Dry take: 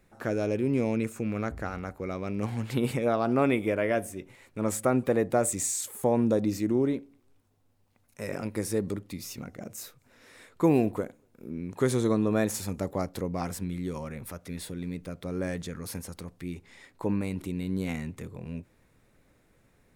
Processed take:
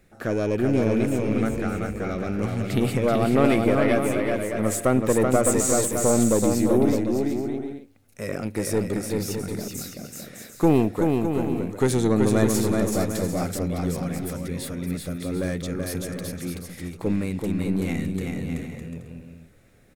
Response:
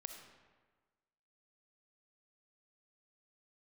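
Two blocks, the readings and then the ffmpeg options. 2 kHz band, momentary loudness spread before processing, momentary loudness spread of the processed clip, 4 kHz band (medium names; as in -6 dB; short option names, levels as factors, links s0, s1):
+5.5 dB, 15 LU, 13 LU, +7.0 dB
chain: -filter_complex "[0:a]equalizer=f=980:t=o:w=0.33:g=-10,aeval=exprs='(tanh(6.31*val(0)+0.5)-tanh(0.5))/6.31':c=same,asplit=2[s0][s1];[s1]aecho=0:1:380|608|744.8|826.9|876.1:0.631|0.398|0.251|0.158|0.1[s2];[s0][s2]amix=inputs=2:normalize=0,volume=2.24"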